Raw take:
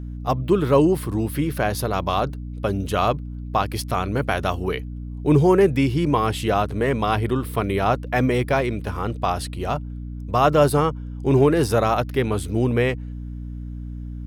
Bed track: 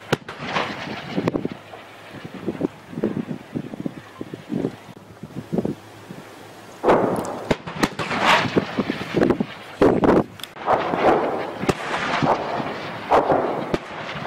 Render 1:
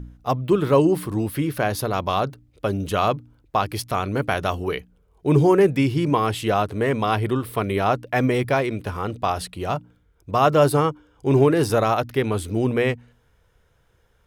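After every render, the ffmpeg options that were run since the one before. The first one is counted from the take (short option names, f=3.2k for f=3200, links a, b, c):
-af "bandreject=f=60:t=h:w=4,bandreject=f=120:t=h:w=4,bandreject=f=180:t=h:w=4,bandreject=f=240:t=h:w=4,bandreject=f=300:t=h:w=4"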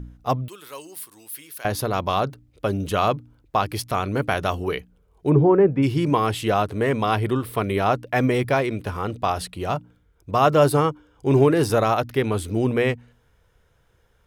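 -filter_complex "[0:a]asettb=1/sr,asplit=3[a][b][c];[a]atrim=end=0.484[d];[b]atrim=start=0.48:end=1.65,asetpts=PTS-STARTPTS,afade=t=in:d=0.004:c=qsin,afade=t=out:st=1.166:d=0.004:c=qsin,aderivative[e];[c]atrim=start=1.646[f];[d][e]acrossfade=d=0.004:c1=hsin:c2=qsin[g];[g][f]acrossfade=d=0.004:c1=qsin:c2=hsin,asplit=3[h][i][j];[h]afade=t=out:st=5.29:d=0.02[k];[i]lowpass=1.3k,afade=t=in:st=5.29:d=0.02,afade=t=out:st=5.82:d=0.02[l];[j]afade=t=in:st=5.82:d=0.02[m];[k][l][m]amix=inputs=3:normalize=0"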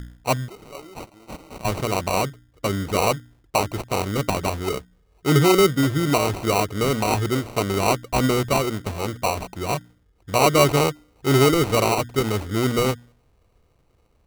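-af "acrusher=samples=26:mix=1:aa=0.000001"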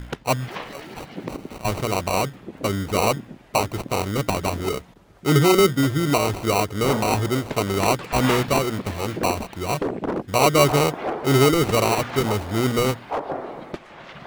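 -filter_complex "[1:a]volume=-10.5dB[a];[0:a][a]amix=inputs=2:normalize=0"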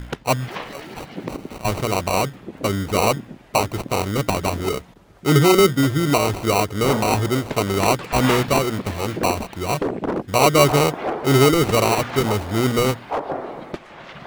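-af "volume=2dB"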